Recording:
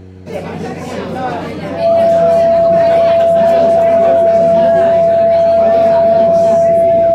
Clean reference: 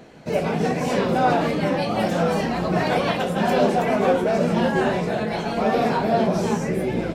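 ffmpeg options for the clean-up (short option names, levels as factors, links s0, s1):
-af "bandreject=f=93.1:t=h:w=4,bandreject=f=186.2:t=h:w=4,bandreject=f=279.3:t=h:w=4,bandreject=f=372.4:t=h:w=4,bandreject=f=465.5:t=h:w=4,bandreject=f=670:w=30"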